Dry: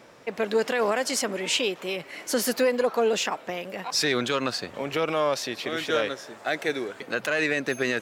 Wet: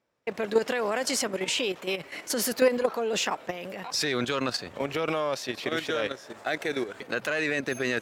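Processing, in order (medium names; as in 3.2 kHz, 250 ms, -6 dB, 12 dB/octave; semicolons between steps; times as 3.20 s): peaking EQ 64 Hz +8 dB 0.98 oct; level held to a coarse grid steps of 10 dB; gate with hold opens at -43 dBFS; trim +2.5 dB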